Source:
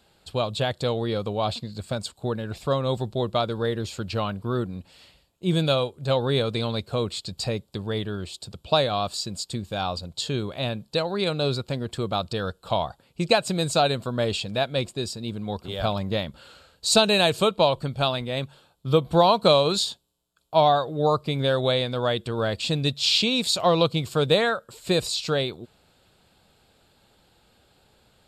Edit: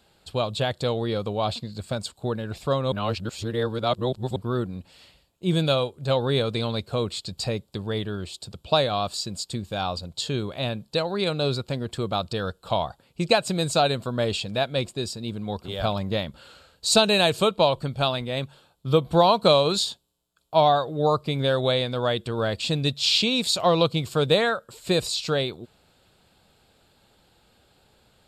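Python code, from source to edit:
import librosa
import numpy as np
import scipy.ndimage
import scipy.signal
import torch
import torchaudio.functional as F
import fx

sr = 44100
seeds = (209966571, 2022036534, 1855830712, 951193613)

y = fx.edit(x, sr, fx.reverse_span(start_s=2.92, length_s=1.44), tone=tone)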